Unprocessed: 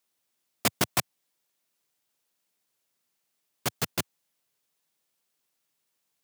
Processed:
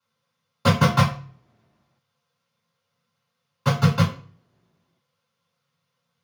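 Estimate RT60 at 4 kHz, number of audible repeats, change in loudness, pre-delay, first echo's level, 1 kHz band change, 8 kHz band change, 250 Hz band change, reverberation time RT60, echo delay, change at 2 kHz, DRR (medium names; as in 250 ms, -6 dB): 0.35 s, no echo, +8.5 dB, 3 ms, no echo, +11.0 dB, -5.5 dB, +14.0 dB, 0.45 s, no echo, +6.5 dB, -8.0 dB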